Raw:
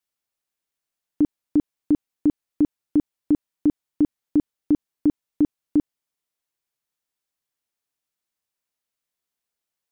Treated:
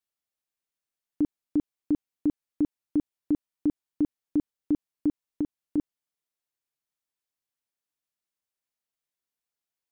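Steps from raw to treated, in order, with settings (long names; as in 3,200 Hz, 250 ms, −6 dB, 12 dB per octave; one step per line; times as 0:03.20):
0:05.09–0:05.78: downward compressor, threshold −19 dBFS, peak gain reduction 5 dB
level −6 dB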